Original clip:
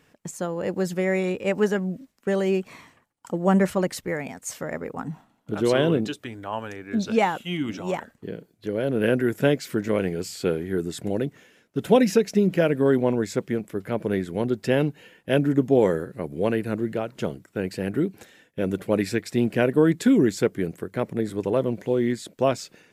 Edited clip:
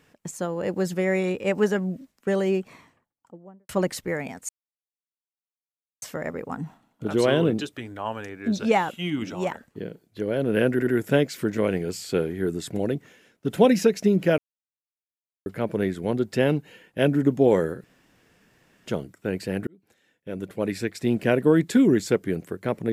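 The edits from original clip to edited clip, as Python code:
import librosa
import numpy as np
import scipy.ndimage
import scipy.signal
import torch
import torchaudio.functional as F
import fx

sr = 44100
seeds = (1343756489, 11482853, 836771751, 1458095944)

y = fx.studio_fade_out(x, sr, start_s=2.28, length_s=1.41)
y = fx.edit(y, sr, fx.insert_silence(at_s=4.49, length_s=1.53),
    fx.stutter(start_s=9.18, slice_s=0.08, count=3),
    fx.silence(start_s=12.69, length_s=1.08),
    fx.room_tone_fill(start_s=16.15, length_s=1.02),
    fx.fade_in_span(start_s=17.98, length_s=1.6), tone=tone)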